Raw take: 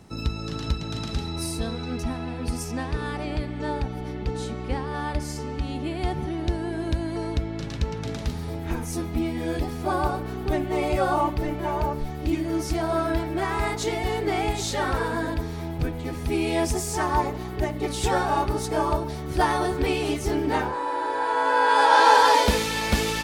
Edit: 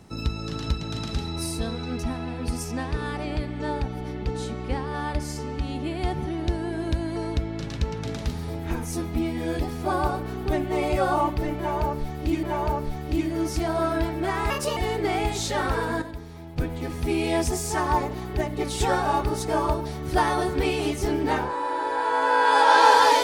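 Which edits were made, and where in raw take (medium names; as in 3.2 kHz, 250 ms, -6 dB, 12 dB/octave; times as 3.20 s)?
11.57–12.43 s: loop, 2 plays
13.64–14.00 s: speed 134%
15.25–15.81 s: gain -9 dB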